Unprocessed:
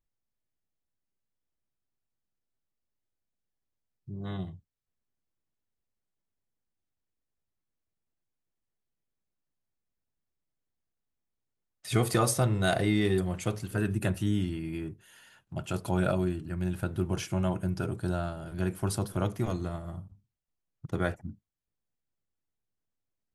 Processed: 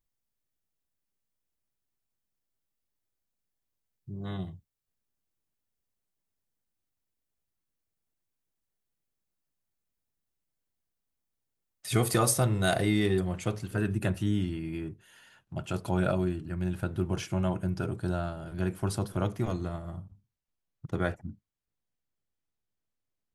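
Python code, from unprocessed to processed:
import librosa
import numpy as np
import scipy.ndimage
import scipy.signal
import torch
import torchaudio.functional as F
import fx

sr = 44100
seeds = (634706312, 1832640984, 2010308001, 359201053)

y = fx.high_shelf(x, sr, hz=8400.0, db=fx.steps((0.0, 6.5), (13.05, -6.5)))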